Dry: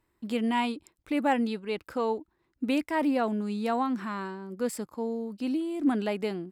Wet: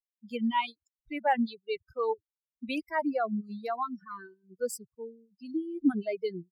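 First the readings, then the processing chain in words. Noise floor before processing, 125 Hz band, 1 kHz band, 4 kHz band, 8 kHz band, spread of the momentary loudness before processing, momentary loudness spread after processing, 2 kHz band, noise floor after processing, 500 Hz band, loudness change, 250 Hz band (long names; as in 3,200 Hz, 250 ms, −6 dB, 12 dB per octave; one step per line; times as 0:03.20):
−75 dBFS, can't be measured, −1.0 dB, −3.0 dB, −1.0 dB, 7 LU, 16 LU, −2.0 dB, below −85 dBFS, −2.5 dB, −2.5 dB, −4.5 dB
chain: spectral dynamics exaggerated over time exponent 3
reverb reduction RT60 0.71 s
level +3.5 dB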